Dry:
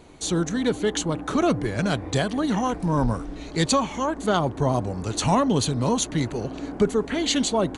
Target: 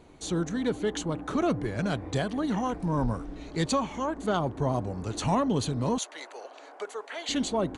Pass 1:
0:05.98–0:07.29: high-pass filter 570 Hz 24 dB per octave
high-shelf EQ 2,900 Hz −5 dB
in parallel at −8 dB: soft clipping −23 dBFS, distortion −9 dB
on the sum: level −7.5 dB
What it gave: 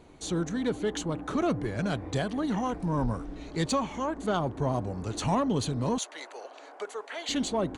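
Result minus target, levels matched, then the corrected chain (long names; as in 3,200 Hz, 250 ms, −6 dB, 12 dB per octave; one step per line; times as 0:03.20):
soft clipping: distortion +11 dB
0:05.98–0:07.29: high-pass filter 570 Hz 24 dB per octave
high-shelf EQ 2,900 Hz −5 dB
in parallel at −8 dB: soft clipping −13.5 dBFS, distortion −20 dB
on the sum: level −7.5 dB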